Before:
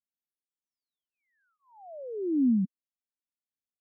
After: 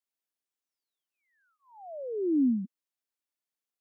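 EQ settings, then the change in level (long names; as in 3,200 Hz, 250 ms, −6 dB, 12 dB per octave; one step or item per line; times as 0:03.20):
high-pass filter 260 Hz 24 dB per octave
+2.5 dB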